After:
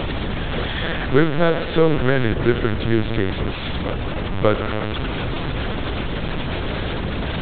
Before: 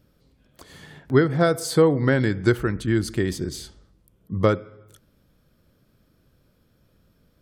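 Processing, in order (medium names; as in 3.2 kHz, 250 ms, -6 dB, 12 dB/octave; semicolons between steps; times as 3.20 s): one-bit delta coder 32 kbps, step -21.5 dBFS; reverberation RT60 1.8 s, pre-delay 8 ms, DRR 11 dB; in parallel at -5 dB: saturation -19 dBFS, distortion -9 dB; on the sum: reverse echo 579 ms -13.5 dB; LPC vocoder at 8 kHz pitch kept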